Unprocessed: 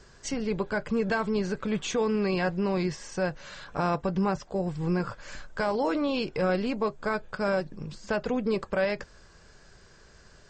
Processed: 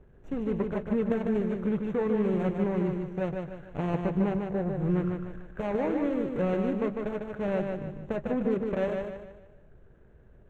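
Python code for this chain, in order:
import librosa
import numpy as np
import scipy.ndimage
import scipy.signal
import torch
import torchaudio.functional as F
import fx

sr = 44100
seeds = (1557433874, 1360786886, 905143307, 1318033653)

y = scipy.signal.medfilt(x, 41)
y = np.convolve(y, np.full(9, 1.0 / 9))[:len(y)]
y = fx.echo_feedback(y, sr, ms=150, feedback_pct=40, wet_db=-4.5)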